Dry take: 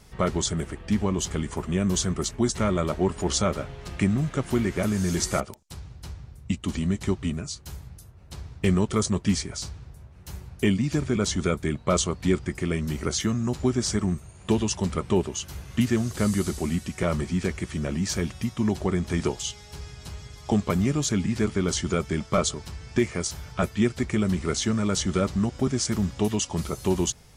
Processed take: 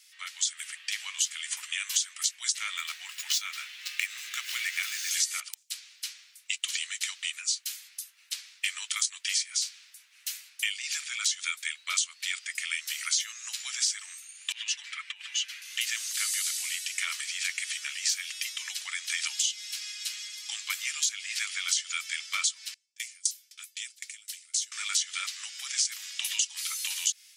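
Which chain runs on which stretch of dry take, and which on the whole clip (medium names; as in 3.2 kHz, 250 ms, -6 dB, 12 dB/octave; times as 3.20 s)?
2.77–5.11 s: median filter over 5 samples + bass shelf 460 Hz -10 dB + band-stop 3.2 kHz, Q 26
14.52–15.62 s: compressor with a negative ratio -25 dBFS, ratio -0.5 + band-pass filter 1.8 kHz, Q 1.5 + comb 6.9 ms
22.74–24.72 s: pre-emphasis filter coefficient 0.9 + gate with hold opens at -43 dBFS, closes at -47 dBFS + sawtooth tremolo in dB decaying 3.9 Hz, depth 27 dB
whole clip: level rider; inverse Chebyshev high-pass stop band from 370 Hz, stop band 80 dB; compression 6:1, threshold -27 dBFS; trim +2 dB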